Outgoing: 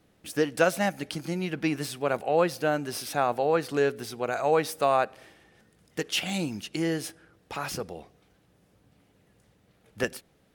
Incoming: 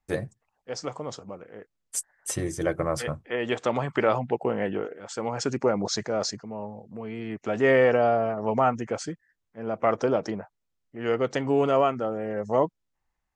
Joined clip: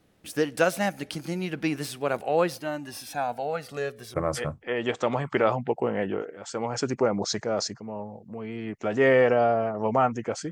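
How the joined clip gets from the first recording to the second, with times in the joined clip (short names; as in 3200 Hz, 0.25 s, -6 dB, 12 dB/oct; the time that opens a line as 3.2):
outgoing
2.58–4.14 cascading flanger falling 0.35 Hz
4.14 switch to incoming from 2.77 s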